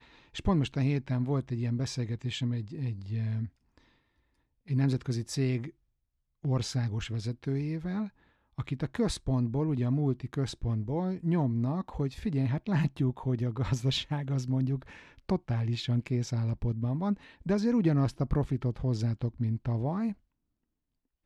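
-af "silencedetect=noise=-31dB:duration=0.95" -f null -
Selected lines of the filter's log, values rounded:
silence_start: 3.46
silence_end: 4.70 | silence_duration: 1.25
silence_start: 20.11
silence_end: 21.26 | silence_duration: 1.14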